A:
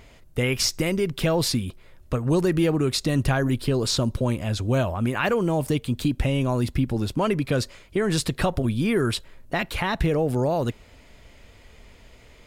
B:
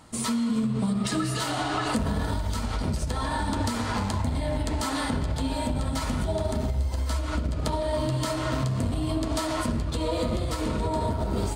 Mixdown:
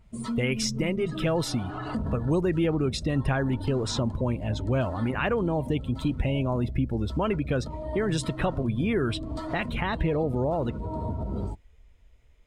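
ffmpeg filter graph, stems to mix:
-filter_complex "[0:a]bandreject=f=4.5k:w=6.1,adynamicequalizer=threshold=0.00708:dfrequency=4900:dqfactor=0.7:tfrequency=4900:tqfactor=0.7:attack=5:release=100:ratio=0.375:range=3:mode=cutabove:tftype=highshelf,volume=-3.5dB,asplit=2[a][b];[1:a]bass=f=250:g=10,treble=f=4k:g=-4,asoftclip=type=tanh:threshold=-10.5dB,lowshelf=f=130:g=-8,volume=-6dB[c];[b]apad=whole_len=509549[d];[c][d]sidechaincompress=threshold=-27dB:ratio=12:attack=16:release=608[e];[a][e]amix=inputs=2:normalize=0,afftdn=nr=15:nf=-41"

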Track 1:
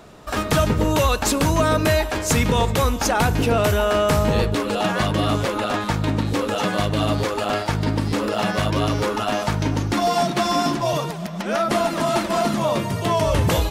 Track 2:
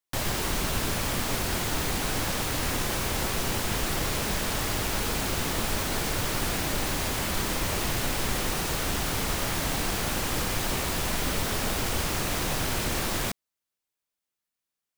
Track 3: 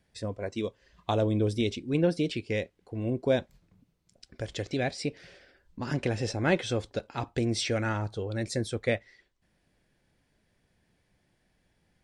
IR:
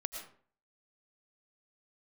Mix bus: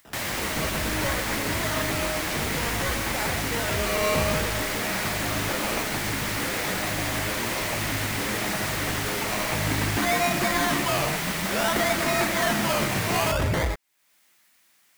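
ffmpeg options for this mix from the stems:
-filter_complex "[0:a]acrusher=samples=20:mix=1:aa=0.000001:lfo=1:lforange=12:lforate=0.56,asoftclip=type=tanh:threshold=-15dB,adelay=50,volume=-7.5dB,asplit=2[a][b];[b]volume=-4dB[c];[1:a]highpass=f=190:p=1,equalizer=f=460:w=4.3:g=-7,acompressor=mode=upward:threshold=-41dB:ratio=2.5,volume=-0.5dB[d];[2:a]alimiter=level_in=0.5dB:limit=-24dB:level=0:latency=1,volume=-0.5dB,volume=-8dB,asplit=2[e][f];[f]apad=whole_len=611079[g];[a][g]sidechaincompress=threshold=-55dB:ratio=8:attack=16:release=686[h];[3:a]atrim=start_sample=2205[i];[c][i]afir=irnorm=-1:irlink=0[j];[h][d][e][j]amix=inputs=4:normalize=0,equalizer=f=2k:w=2.3:g=6.5"

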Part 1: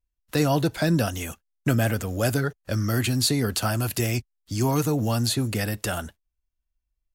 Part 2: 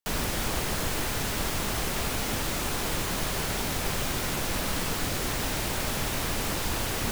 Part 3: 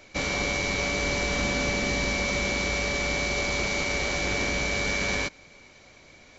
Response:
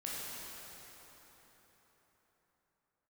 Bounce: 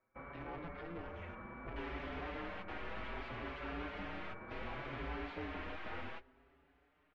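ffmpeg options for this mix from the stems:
-filter_complex "[0:a]acompressor=threshold=-30dB:ratio=10,aeval=exprs='val(0)*sgn(sin(2*PI*170*n/s))':c=same,volume=-7.5dB,asplit=3[a][b][c];[b]volume=-20.5dB[d];[1:a]highpass=f=900:p=1,aeval=exprs='(tanh(79.4*val(0)+0.75)-tanh(0.75))/79.4':c=same,adelay=1700,volume=-0.5dB[e];[2:a]acompressor=threshold=-37dB:ratio=3,lowpass=f=1.3k:t=q:w=2.6,volume=-9dB[f];[c]apad=whole_len=388778[g];[e][g]sidechaingate=range=-28dB:threshold=-58dB:ratio=16:detection=peak[h];[a][f]amix=inputs=2:normalize=0,agate=range=-17dB:threshold=-47dB:ratio=16:detection=peak,alimiter=level_in=10.5dB:limit=-24dB:level=0:latency=1:release=19,volume=-10.5dB,volume=0dB[i];[3:a]atrim=start_sample=2205[j];[d][j]afir=irnorm=-1:irlink=0[k];[h][i][k]amix=inputs=3:normalize=0,lowpass=f=2.6k:w=0.5412,lowpass=f=2.6k:w=1.3066,asplit=2[l][m];[m]adelay=5.7,afreqshift=0.65[n];[l][n]amix=inputs=2:normalize=1"

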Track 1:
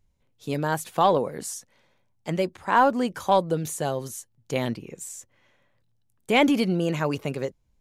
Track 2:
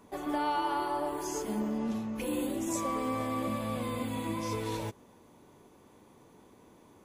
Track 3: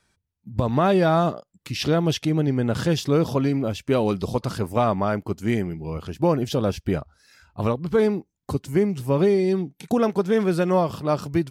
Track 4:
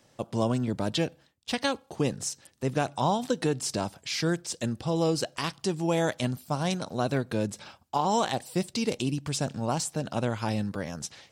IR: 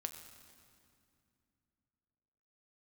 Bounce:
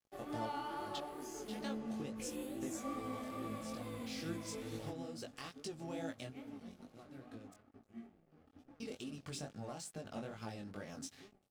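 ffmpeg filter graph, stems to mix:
-filter_complex "[0:a]volume=-14.5dB,asplit=3[a][b][c];[b]volume=-19dB[d];[1:a]volume=-8dB,asplit=2[e][f];[f]volume=-17.5dB[g];[2:a]acompressor=threshold=-29dB:ratio=4,asplit=2[h][i];[i]adelay=3.2,afreqshift=-0.87[j];[h][j]amix=inputs=2:normalize=1,adelay=2450,volume=-5.5dB,asplit=2[k][l];[l]volume=-14.5dB[m];[3:a]bass=f=250:g=-4,treble=f=4k:g=-2,acompressor=threshold=-33dB:ratio=6,asoftclip=type=tanh:threshold=-25.5dB,volume=-4dB,asplit=3[n][o][p];[n]atrim=end=7.54,asetpts=PTS-STARTPTS,afade=t=out:st=7.536:d=0.004:c=hsin[q];[o]atrim=start=7.54:end=8.8,asetpts=PTS-STARTPTS,volume=0[r];[p]atrim=start=8.8,asetpts=PTS-STARTPTS,afade=t=in:d=0.004:c=hsin[s];[q][r][s]concat=n=3:v=0:a=1[t];[c]apad=whole_len=498895[u];[t][u]sidechaincompress=threshold=-51dB:ratio=6:attack=7.5:release=141[v];[a][k]amix=inputs=2:normalize=0,asuperpass=centerf=260:order=20:qfactor=3.5,alimiter=level_in=15dB:limit=-24dB:level=0:latency=1:release=362,volume=-15dB,volume=0dB[w];[4:a]atrim=start_sample=2205[x];[d][g][m]amix=inputs=3:normalize=0[y];[y][x]afir=irnorm=-1:irlink=0[z];[e][v][w][z]amix=inputs=4:normalize=0,aeval=exprs='sgn(val(0))*max(abs(val(0))-0.00158,0)':c=same,asuperstop=centerf=970:order=4:qfactor=7.4,flanger=delay=18:depth=4.9:speed=2.3"

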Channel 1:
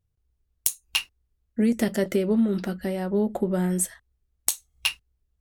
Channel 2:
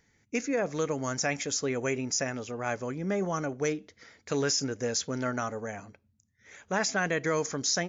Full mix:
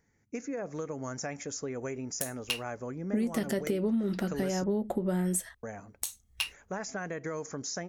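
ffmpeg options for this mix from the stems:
-filter_complex "[0:a]alimiter=limit=-14.5dB:level=0:latency=1:release=115,adelay=1550,volume=0dB[a];[1:a]equalizer=f=3.5k:w=1:g=-12,acompressor=threshold=-30dB:ratio=6,volume=-2.5dB,asplit=3[b][c][d];[b]atrim=end=4.64,asetpts=PTS-STARTPTS,afade=t=out:st=4.636:d=0.004:c=hsin[e];[c]atrim=start=4.64:end=5.63,asetpts=PTS-STARTPTS,volume=0[f];[d]atrim=start=5.63,asetpts=PTS-STARTPTS,afade=t=in:d=0.004:c=hsin[g];[e][f][g]concat=n=3:v=0:a=1[h];[a][h]amix=inputs=2:normalize=0,acompressor=threshold=-27dB:ratio=4"

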